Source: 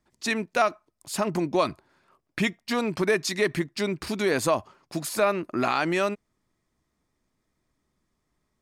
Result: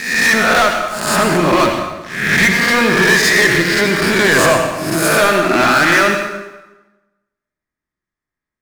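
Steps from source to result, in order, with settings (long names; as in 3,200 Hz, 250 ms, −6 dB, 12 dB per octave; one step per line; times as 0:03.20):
peak hold with a rise ahead of every peak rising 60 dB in 0.73 s
parametric band 1,700 Hz +12.5 dB 0.83 octaves
leveller curve on the samples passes 5
convolution reverb RT60 1.1 s, pre-delay 68 ms, DRR 3.5 dB
level −6.5 dB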